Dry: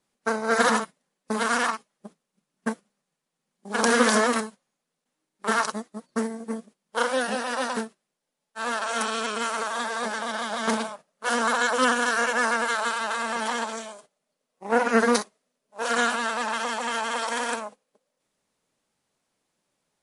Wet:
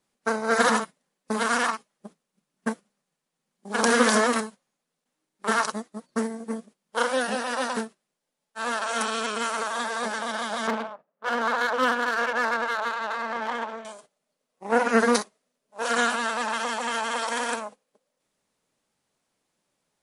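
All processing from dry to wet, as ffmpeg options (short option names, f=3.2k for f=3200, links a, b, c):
-filter_complex "[0:a]asettb=1/sr,asplit=3[a][b][c];[a]atrim=end=10.674[d];[b]atrim=start=10.67:end=13.85,asetpts=PTS-STARTPTS,afade=t=in:d=0.004:c=qsin,afade=t=out:st=3.176:d=0.004:c=qsin,highshelf=f=5.9k:g=-10.5,adynamicsmooth=sensitivity=2.5:basefreq=1.5k,highpass=f=290:p=1[e];[c]atrim=start=13.846[f];[d][e]acrossfade=d=0.004:c1=hsin:c2=qsin[g];[g][f]acrossfade=d=0.004:c1=qsin:c2=hsin"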